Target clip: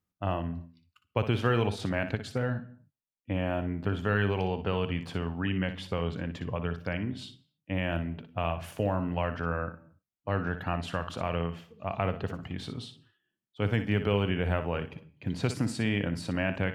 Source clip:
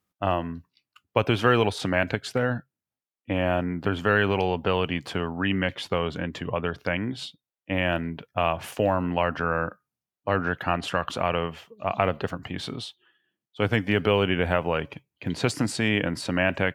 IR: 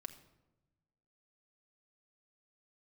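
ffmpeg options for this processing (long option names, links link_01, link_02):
-filter_complex "[0:a]lowshelf=frequency=180:gain=10.5,asplit=2[link_01][link_02];[1:a]atrim=start_sample=2205,afade=type=out:start_time=0.29:duration=0.01,atrim=end_sample=13230,adelay=59[link_03];[link_02][link_03]afir=irnorm=-1:irlink=0,volume=-5.5dB[link_04];[link_01][link_04]amix=inputs=2:normalize=0,volume=-8.5dB"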